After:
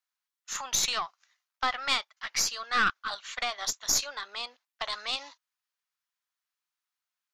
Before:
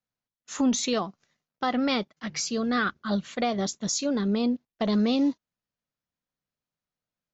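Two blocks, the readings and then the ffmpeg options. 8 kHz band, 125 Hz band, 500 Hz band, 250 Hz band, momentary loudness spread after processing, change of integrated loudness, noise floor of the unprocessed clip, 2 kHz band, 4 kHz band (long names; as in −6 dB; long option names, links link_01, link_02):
can't be measured, −18.0 dB, −14.0 dB, −25.5 dB, 11 LU, −3.0 dB, below −85 dBFS, +3.0 dB, +3.5 dB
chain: -filter_complex "[0:a]highpass=frequency=960:width=0.5412,highpass=frequency=960:width=1.3066,aeval=exprs='0.158*(cos(1*acos(clip(val(0)/0.158,-1,1)))-cos(1*PI/2))+0.0178*(cos(4*acos(clip(val(0)/0.158,-1,1)))-cos(4*PI/2))':channel_layout=same,asplit=2[link_01][link_02];[link_02]aeval=exprs='clip(val(0),-1,0.0376)':channel_layout=same,volume=-7dB[link_03];[link_01][link_03]amix=inputs=2:normalize=0"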